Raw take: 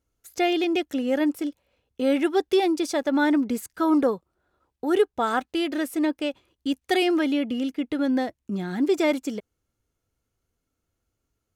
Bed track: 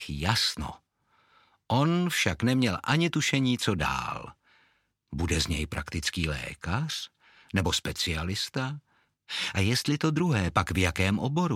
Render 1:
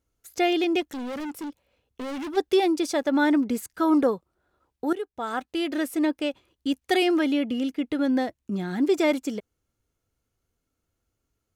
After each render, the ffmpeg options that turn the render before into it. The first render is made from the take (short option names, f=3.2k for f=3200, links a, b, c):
-filter_complex "[0:a]asplit=3[a][b][c];[a]afade=t=out:st=0.8:d=0.02[d];[b]volume=31dB,asoftclip=hard,volume=-31dB,afade=t=in:st=0.8:d=0.02,afade=t=out:st=2.36:d=0.02[e];[c]afade=t=in:st=2.36:d=0.02[f];[d][e][f]amix=inputs=3:normalize=0,asplit=2[g][h];[g]atrim=end=4.93,asetpts=PTS-STARTPTS,afade=t=out:st=4.926:d=0.004:c=hsin:silence=0.158489[i];[h]atrim=start=4.93,asetpts=PTS-STARTPTS,afade=t=in:d=0.86:silence=0.158489[j];[i][j]concat=n=2:v=0:a=1"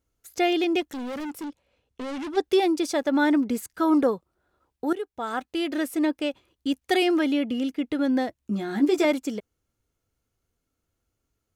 -filter_complex "[0:a]asettb=1/sr,asplit=3[a][b][c];[a]atrim=end=1.454[d];[b]atrim=start=1.45:end=2.44,asetpts=PTS-STARTPTS,afade=t=in:d=0.004:c=qsin,afade=t=out:st=0.986:d=0.004:c=qsin,lowpass=9.6k[e];[c]atrim=start=2.436[f];[d][e]acrossfade=d=0.004:c1=hsin:c2=qsin[g];[g][f]acrossfade=d=0.004:c1=qsin:c2=hsin,asettb=1/sr,asplit=3[h][i][j];[h]atrim=end=8.414[k];[i]atrim=start=8.41:end=9.05,asetpts=PTS-STARTPTS,afade=t=in:d=0.004:c=qsin,afade=t=out:st=0.636:d=0.004:c=qsin,asplit=2[l][m];[m]adelay=14,volume=-4dB[n];[l][n]amix=inputs=2:normalize=0,atrim=end_sample=28224[o];[j]atrim=start=9.046[p];[k][o]acrossfade=d=0.004:c1=hsin:c2=qsin[q];[q][p]acrossfade=d=0.004:c1=qsin:c2=hsin"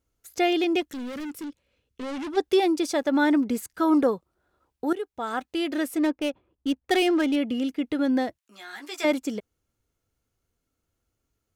-filter_complex "[0:a]asettb=1/sr,asplit=3[a][b][c];[a]atrim=end=0.864[d];[b]atrim=start=0.86:end=2.03,asetpts=PTS-STARTPTS,afade=t=in:d=0.004:c=qsin,afade=t=out:st=1.166:d=0.004:c=qsin,equalizer=f=790:w=1.6:g=-9.5[e];[c]atrim=start=2.026[f];[d][e]acrossfade=d=0.004:c1=hsin:c2=qsin[g];[g][f]acrossfade=d=0.004:c1=qsin:c2=hsin,asettb=1/sr,asplit=3[h][i][j];[h]atrim=end=5.984[k];[i]atrim=start=5.98:end=7.36,asetpts=PTS-STARTPTS,afade=t=in:d=0.004:c=qsin,afade=t=out:st=1.376:d=0.004:c=qsin,adynamicsmooth=sensitivity=8:basefreq=1.3k[l];[j]atrim=start=7.356[m];[k][l]acrossfade=d=0.004:c1=hsin:c2=qsin[n];[n][m]acrossfade=d=0.004:c1=qsin:c2=hsin,asplit=3[o][p][q];[o]afade=t=out:st=8.37:d=0.02[r];[p]highpass=1.2k,afade=t=in:st=8.37:d=0.02,afade=t=out:st=9.03:d=0.02[s];[q]afade=t=in:st=9.03:d=0.02[t];[r][s][t]amix=inputs=3:normalize=0"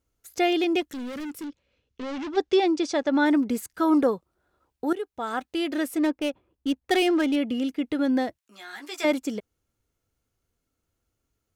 -filter_complex "[0:a]asettb=1/sr,asplit=3[a][b][c];[a]atrim=end=1.474[d];[b]atrim=start=1.47:end=3.26,asetpts=PTS-STARTPTS,afade=t=in:d=0.004:c=qsin,afade=t=out:st=1.786:d=0.004:c=qsin,lowpass=f=6.8k:w=0.5412,lowpass=f=6.8k:w=1.3066[e];[c]atrim=start=3.256[f];[d][e]acrossfade=d=0.004:c1=hsin:c2=qsin[g];[g][f]acrossfade=d=0.004:c1=qsin:c2=hsin"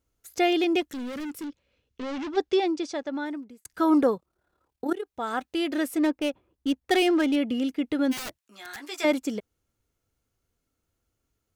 -filter_complex "[0:a]asplit=3[a][b][c];[a]afade=t=out:st=4.15:d=0.02[d];[b]tremolo=f=36:d=0.621,afade=t=in:st=4.15:d=0.02,afade=t=out:st=5.05:d=0.02[e];[c]afade=t=in:st=5.05:d=0.02[f];[d][e][f]amix=inputs=3:normalize=0,asplit=3[g][h][i];[g]afade=t=out:st=8.11:d=0.02[j];[h]aeval=exprs='(mod(31.6*val(0)+1,2)-1)/31.6':c=same,afade=t=in:st=8.11:d=0.02,afade=t=out:st=8.83:d=0.02[k];[i]afade=t=in:st=8.83:d=0.02[l];[j][k][l]amix=inputs=3:normalize=0,asplit=2[m][n];[m]atrim=end=3.65,asetpts=PTS-STARTPTS,afade=t=out:st=2.21:d=1.44[o];[n]atrim=start=3.65,asetpts=PTS-STARTPTS,afade=t=in:d=0.004:c=hsin[p];[o][p]concat=n=2:v=0:a=1"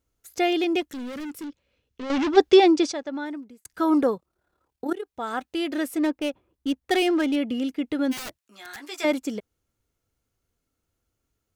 -filter_complex "[0:a]asplit=3[a][b][c];[a]atrim=end=2.102[d];[b]atrim=start=2.098:end=2.922,asetpts=PTS-STARTPTS,volume=9dB[e];[c]atrim=start=2.918[f];[d][e]acrossfade=d=0.004:c1=hsin:c2=hsin[g];[g][f]acrossfade=d=0.004:c1=hsin:c2=hsin"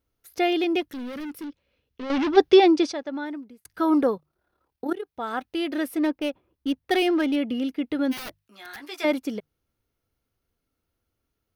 -af "equalizer=f=7.4k:t=o:w=0.43:g=-12.5,bandreject=f=50:t=h:w=6,bandreject=f=100:t=h:w=6,bandreject=f=150:t=h:w=6"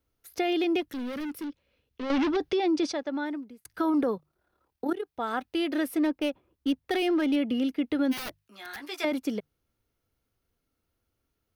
-filter_complex "[0:a]alimiter=limit=-16.5dB:level=0:latency=1:release=17,acrossover=split=230[a][b];[b]acompressor=threshold=-24dB:ratio=6[c];[a][c]amix=inputs=2:normalize=0"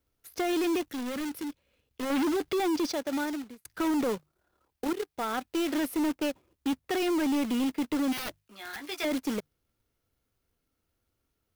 -af "acrusher=bits=2:mode=log:mix=0:aa=0.000001,asoftclip=type=hard:threshold=-24.5dB"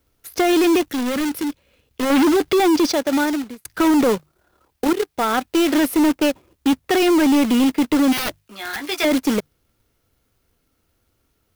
-af "volume=12dB"